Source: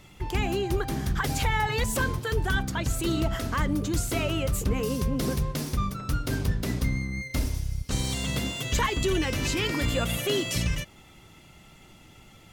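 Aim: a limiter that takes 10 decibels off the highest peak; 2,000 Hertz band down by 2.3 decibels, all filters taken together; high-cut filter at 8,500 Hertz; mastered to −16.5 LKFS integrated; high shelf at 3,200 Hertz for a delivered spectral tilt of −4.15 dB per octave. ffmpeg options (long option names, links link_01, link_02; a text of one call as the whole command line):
ffmpeg -i in.wav -af "lowpass=8500,equalizer=frequency=2000:width_type=o:gain=-5.5,highshelf=frequency=3200:gain=7,volume=15.5dB,alimiter=limit=-7.5dB:level=0:latency=1" out.wav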